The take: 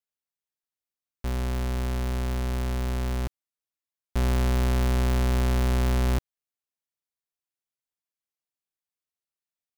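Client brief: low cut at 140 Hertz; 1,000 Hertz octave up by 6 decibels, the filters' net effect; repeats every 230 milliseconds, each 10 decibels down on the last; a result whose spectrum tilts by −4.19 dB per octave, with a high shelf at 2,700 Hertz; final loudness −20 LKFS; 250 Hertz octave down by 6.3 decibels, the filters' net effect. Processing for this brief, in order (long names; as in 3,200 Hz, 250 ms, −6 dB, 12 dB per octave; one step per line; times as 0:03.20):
high-pass filter 140 Hz
parametric band 250 Hz −7.5 dB
parametric band 1,000 Hz +7.5 dB
high-shelf EQ 2,700 Hz +3.5 dB
repeating echo 230 ms, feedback 32%, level −10 dB
level +11 dB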